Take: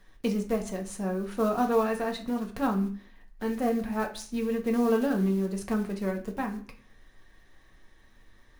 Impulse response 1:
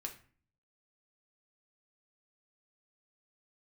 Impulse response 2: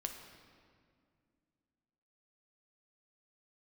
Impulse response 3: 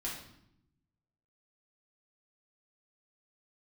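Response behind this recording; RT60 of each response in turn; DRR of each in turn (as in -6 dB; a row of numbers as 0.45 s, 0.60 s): 1; 0.45 s, 2.2 s, 0.75 s; 2.0 dB, 3.5 dB, -5.5 dB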